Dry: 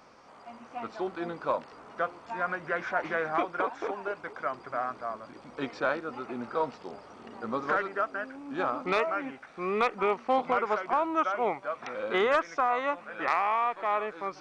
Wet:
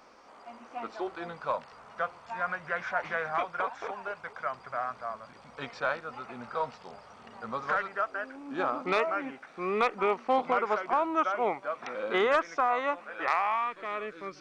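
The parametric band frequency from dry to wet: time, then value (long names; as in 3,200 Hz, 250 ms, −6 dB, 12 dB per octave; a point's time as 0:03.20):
parametric band −14.5 dB 0.81 octaves
0:00.86 120 Hz
0:01.32 320 Hz
0:07.96 320 Hz
0:08.57 75 Hz
0:12.70 75 Hz
0:13.41 270 Hz
0:13.76 840 Hz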